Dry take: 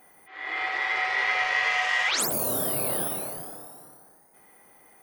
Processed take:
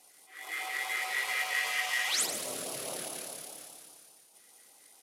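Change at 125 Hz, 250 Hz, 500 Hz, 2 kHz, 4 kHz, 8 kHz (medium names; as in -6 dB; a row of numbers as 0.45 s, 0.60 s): -16.0 dB, -11.5 dB, -9.5 dB, -7.0 dB, -3.0 dB, -3.0 dB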